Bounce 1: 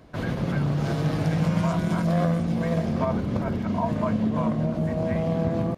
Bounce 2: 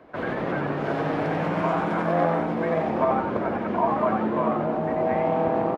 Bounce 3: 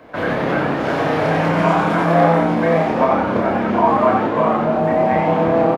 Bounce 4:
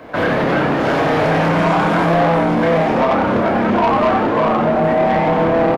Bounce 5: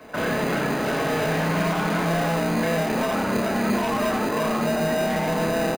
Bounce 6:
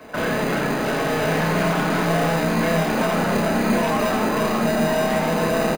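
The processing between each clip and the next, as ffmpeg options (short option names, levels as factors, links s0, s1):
-filter_complex "[0:a]acrossover=split=270 2600:gain=0.141 1 0.1[s0][s1][s2];[s0][s1][s2]amix=inputs=3:normalize=0,asplit=6[s3][s4][s5][s6][s7][s8];[s4]adelay=90,afreqshift=130,volume=0.596[s9];[s5]adelay=180,afreqshift=260,volume=0.257[s10];[s6]adelay=270,afreqshift=390,volume=0.11[s11];[s7]adelay=360,afreqshift=520,volume=0.0473[s12];[s8]adelay=450,afreqshift=650,volume=0.0204[s13];[s3][s9][s10][s11][s12][s13]amix=inputs=6:normalize=0,volume=1.68"
-filter_complex "[0:a]highshelf=f=3300:g=7.5,bandreject=f=380:w=12,asplit=2[s0][s1];[s1]adelay=30,volume=0.75[s2];[s0][s2]amix=inputs=2:normalize=0,volume=2"
-filter_complex "[0:a]asplit=2[s0][s1];[s1]alimiter=limit=0.266:level=0:latency=1:release=322,volume=1.12[s2];[s0][s2]amix=inputs=2:normalize=0,asoftclip=type=tanh:threshold=0.335"
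-filter_complex "[0:a]aecho=1:1:4.7:0.35,acrossover=split=570|1400[s0][s1][s2];[s0]acrusher=samples=20:mix=1:aa=0.000001[s3];[s1]alimiter=limit=0.15:level=0:latency=1[s4];[s3][s4][s2]amix=inputs=3:normalize=0,volume=0.422"
-filter_complex "[0:a]asplit=2[s0][s1];[s1]aeval=exprs='clip(val(0),-1,0.0251)':c=same,volume=0.355[s2];[s0][s2]amix=inputs=2:normalize=0,aecho=1:1:1094:0.531"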